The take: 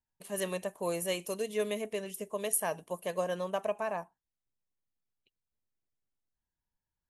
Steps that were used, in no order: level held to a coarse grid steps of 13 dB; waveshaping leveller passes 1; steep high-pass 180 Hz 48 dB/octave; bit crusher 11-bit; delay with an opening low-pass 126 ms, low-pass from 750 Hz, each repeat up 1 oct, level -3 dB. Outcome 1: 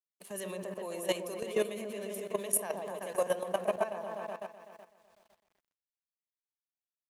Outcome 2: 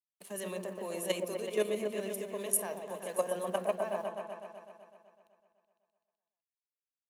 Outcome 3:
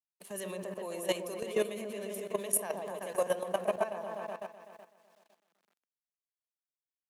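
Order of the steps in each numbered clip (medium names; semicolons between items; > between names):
delay with an opening low-pass > waveshaping leveller > steep high-pass > bit crusher > level held to a coarse grid; waveshaping leveller > level held to a coarse grid > steep high-pass > bit crusher > delay with an opening low-pass; delay with an opening low-pass > waveshaping leveller > bit crusher > steep high-pass > level held to a coarse grid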